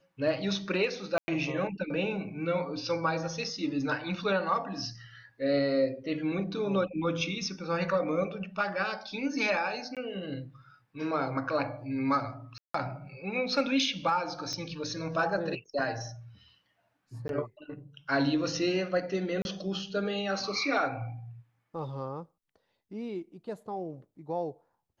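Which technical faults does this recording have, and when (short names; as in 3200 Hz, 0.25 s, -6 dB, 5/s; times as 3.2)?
1.18–1.28 gap 0.1 s
9.95–9.97 gap 17 ms
12.58–12.74 gap 0.164 s
14.53 pop -23 dBFS
17.28–17.29 gap 12 ms
19.42–19.45 gap 31 ms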